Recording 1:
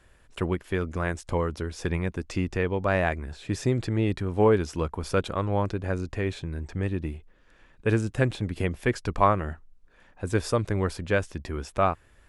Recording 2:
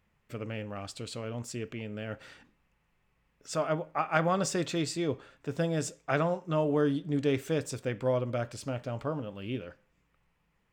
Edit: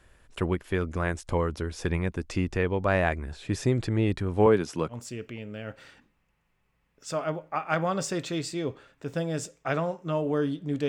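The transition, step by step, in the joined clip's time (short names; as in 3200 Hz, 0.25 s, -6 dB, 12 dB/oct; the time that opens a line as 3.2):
recording 1
4.46–4.96 HPF 120 Hz 24 dB/oct
4.92 switch to recording 2 from 1.35 s, crossfade 0.08 s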